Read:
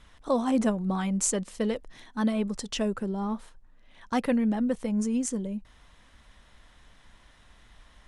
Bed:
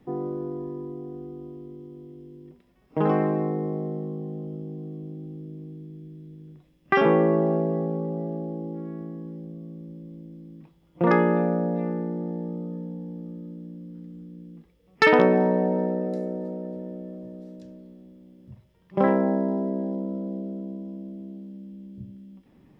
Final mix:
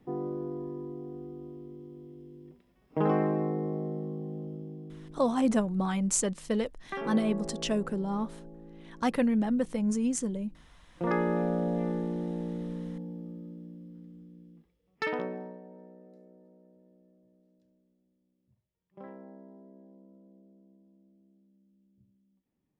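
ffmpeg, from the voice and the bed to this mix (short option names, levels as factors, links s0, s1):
-filter_complex "[0:a]adelay=4900,volume=0.891[s0];[1:a]volume=2.99,afade=t=out:st=4.42:d=0.95:silence=0.237137,afade=t=in:st=10.71:d=1.1:silence=0.211349,afade=t=out:st=12.89:d=2.72:silence=0.0707946[s1];[s0][s1]amix=inputs=2:normalize=0"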